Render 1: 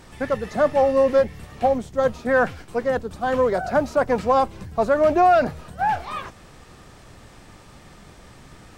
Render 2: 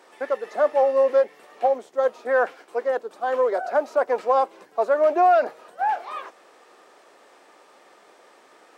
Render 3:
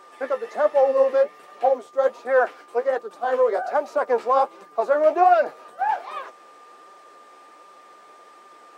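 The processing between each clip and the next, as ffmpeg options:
-af "highpass=f=390:w=0.5412,highpass=f=390:w=1.3066,highshelf=f=2k:g=-8.5"
-af "flanger=delay=5.1:depth=8.6:regen=38:speed=1.3:shape=sinusoidal,aeval=exprs='val(0)+0.00251*sin(2*PI*1200*n/s)':c=same,volume=4.5dB"

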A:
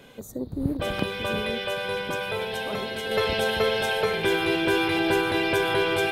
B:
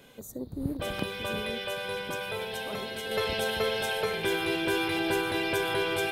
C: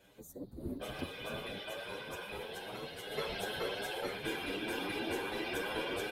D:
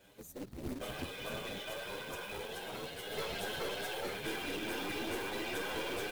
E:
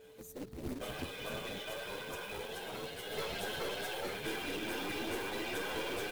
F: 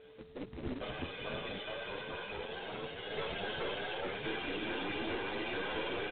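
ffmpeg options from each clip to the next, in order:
-af "highshelf=f=5.8k:g=7,volume=-5.5dB"
-filter_complex "[0:a]afftfilt=real='hypot(re,im)*cos(2*PI*random(0))':imag='hypot(re,im)*sin(2*PI*random(1))':win_size=512:overlap=0.75,asplit=2[a][b];[b]adelay=8.4,afreqshift=2.7[c];[a][c]amix=inputs=2:normalize=1"
-af "acrusher=bits=2:mode=log:mix=0:aa=0.000001,aeval=exprs='0.0596*(cos(1*acos(clip(val(0)/0.0596,-1,1)))-cos(1*PI/2))+0.0133*(cos(5*acos(clip(val(0)/0.0596,-1,1)))-cos(5*PI/2))+0.00841*(cos(6*acos(clip(val(0)/0.0596,-1,1)))-cos(6*PI/2))':c=same,volume=-5.5dB"
-af "aeval=exprs='val(0)+0.00178*sin(2*PI*440*n/s)':c=same"
-af "aresample=8000,acrusher=bits=3:mode=log:mix=0:aa=0.000001,aresample=44100,volume=1dB" -ar 22050 -c:a libmp3lame -b:a 32k

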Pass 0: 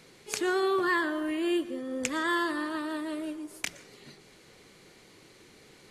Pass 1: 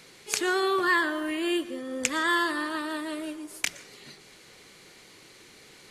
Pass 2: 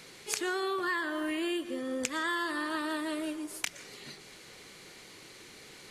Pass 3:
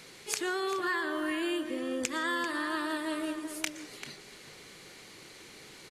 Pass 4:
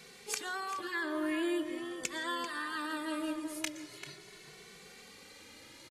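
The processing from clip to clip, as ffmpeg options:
-af "tiltshelf=f=860:g=-3.5,volume=2.5dB"
-af "acompressor=threshold=-31dB:ratio=5,volume=1dB"
-filter_complex "[0:a]asplit=2[a][b];[b]adelay=390.7,volume=-8dB,highshelf=f=4k:g=-8.79[c];[a][c]amix=inputs=2:normalize=0"
-filter_complex "[0:a]asplit=2[a][b];[b]adelay=2.2,afreqshift=0.42[c];[a][c]amix=inputs=2:normalize=1"

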